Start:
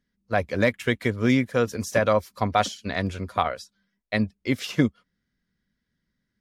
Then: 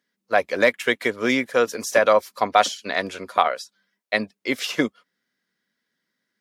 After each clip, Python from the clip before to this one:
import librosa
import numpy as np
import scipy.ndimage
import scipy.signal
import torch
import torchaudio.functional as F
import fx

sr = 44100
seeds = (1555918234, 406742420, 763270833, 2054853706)

y = scipy.signal.sosfilt(scipy.signal.butter(2, 400.0, 'highpass', fs=sr, output='sos'), x)
y = y * 10.0 ** (5.5 / 20.0)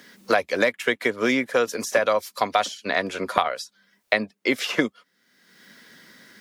y = fx.band_squash(x, sr, depth_pct=100)
y = y * 10.0 ** (-2.0 / 20.0)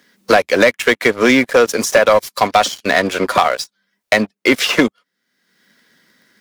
y = fx.leveller(x, sr, passes=3)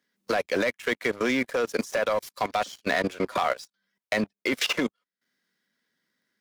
y = fx.level_steps(x, sr, step_db=18)
y = y * 10.0 ** (-6.0 / 20.0)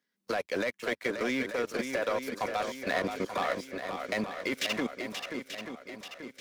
y = fx.echo_swing(x, sr, ms=885, ratio=1.5, feedback_pct=48, wet_db=-7.0)
y = y * 10.0 ** (-6.0 / 20.0)